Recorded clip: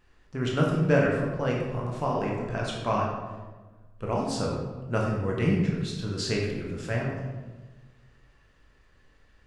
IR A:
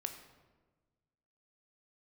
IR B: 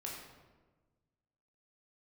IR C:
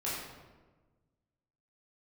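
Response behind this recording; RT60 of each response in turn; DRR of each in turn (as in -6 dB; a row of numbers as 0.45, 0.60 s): B; 1.3, 1.3, 1.3 s; 6.0, -3.0, -8.5 dB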